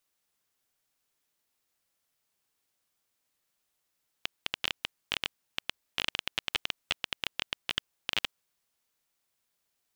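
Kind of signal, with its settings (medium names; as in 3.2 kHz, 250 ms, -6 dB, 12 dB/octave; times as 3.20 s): random clicks 13 per s -10.5 dBFS 4.06 s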